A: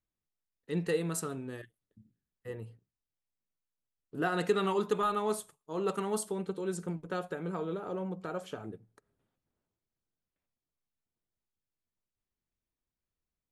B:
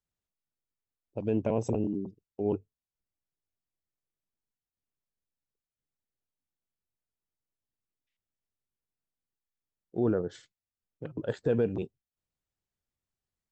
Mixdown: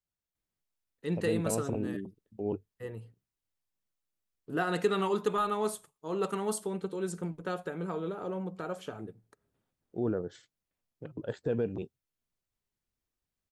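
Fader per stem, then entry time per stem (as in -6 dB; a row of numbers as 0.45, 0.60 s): +0.5, -4.0 dB; 0.35, 0.00 s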